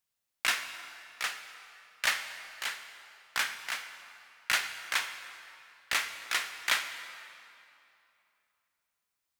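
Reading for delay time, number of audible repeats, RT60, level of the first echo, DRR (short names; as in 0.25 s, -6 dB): none, none, 2.8 s, none, 8.0 dB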